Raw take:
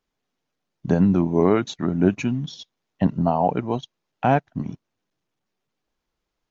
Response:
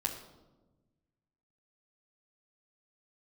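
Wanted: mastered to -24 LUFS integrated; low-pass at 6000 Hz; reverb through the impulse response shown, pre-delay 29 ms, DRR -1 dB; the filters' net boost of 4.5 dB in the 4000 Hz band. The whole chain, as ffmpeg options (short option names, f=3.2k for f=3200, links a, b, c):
-filter_complex "[0:a]lowpass=6k,equalizer=f=4k:t=o:g=6,asplit=2[a][b];[1:a]atrim=start_sample=2205,adelay=29[c];[b][c]afir=irnorm=-1:irlink=0,volume=-2dB[d];[a][d]amix=inputs=2:normalize=0,volume=-5.5dB"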